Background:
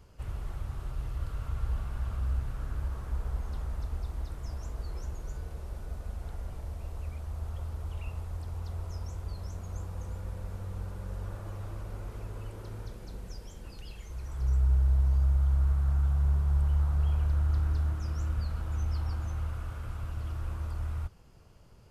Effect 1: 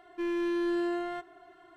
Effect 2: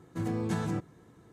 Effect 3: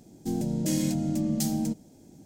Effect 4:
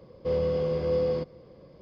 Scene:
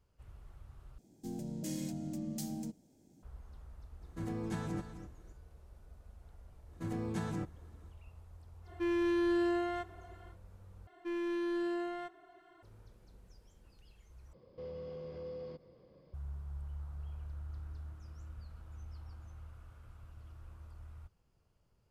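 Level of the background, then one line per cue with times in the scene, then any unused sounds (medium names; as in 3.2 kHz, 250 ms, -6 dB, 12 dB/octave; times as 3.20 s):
background -17 dB
0.98 s: replace with 3 -12.5 dB
4.01 s: add 2 -7 dB + delay 260 ms -11 dB
6.65 s: add 2 -6 dB, fades 0.10 s
8.62 s: add 1 -1 dB, fades 0.10 s
10.87 s: replace with 1 -5.5 dB
14.33 s: replace with 4 -10.5 dB + compression 2:1, threshold -37 dBFS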